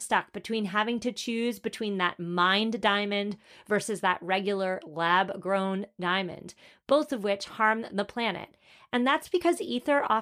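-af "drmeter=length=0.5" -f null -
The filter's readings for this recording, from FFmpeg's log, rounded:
Channel 1: DR: 13.0
Overall DR: 13.0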